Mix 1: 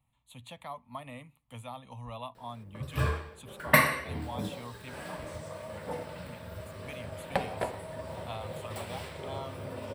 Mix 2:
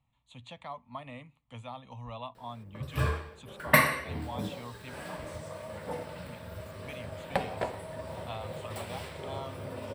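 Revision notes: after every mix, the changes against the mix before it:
speech: add low-pass filter 7,000 Hz 24 dB per octave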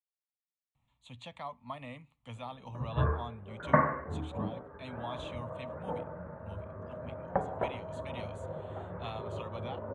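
speech: entry +0.75 s
background: add Butterworth low-pass 1,500 Hz 36 dB per octave

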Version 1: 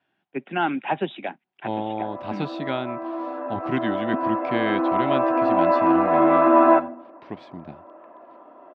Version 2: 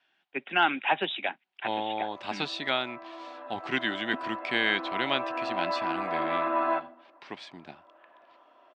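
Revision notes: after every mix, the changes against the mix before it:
background −10.0 dB
master: add spectral tilt +4.5 dB per octave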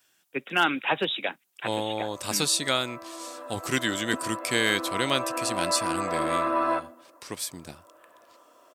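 master: remove loudspeaker in its box 230–3,300 Hz, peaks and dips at 300 Hz −3 dB, 490 Hz −10 dB, 780 Hz +5 dB, 1,200 Hz −5 dB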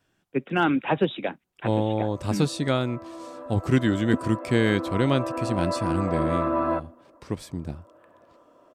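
background: send −8.5 dB
master: add spectral tilt −4.5 dB per octave

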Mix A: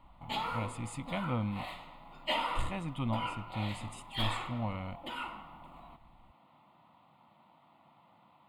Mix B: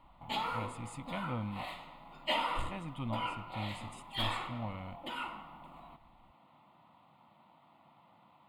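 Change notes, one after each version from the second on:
speech −4.5 dB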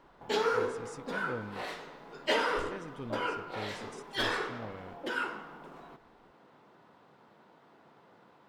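speech −7.0 dB
master: remove phaser with its sweep stopped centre 1,600 Hz, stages 6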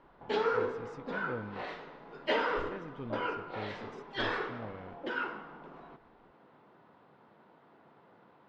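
master: add high-frequency loss of the air 220 metres

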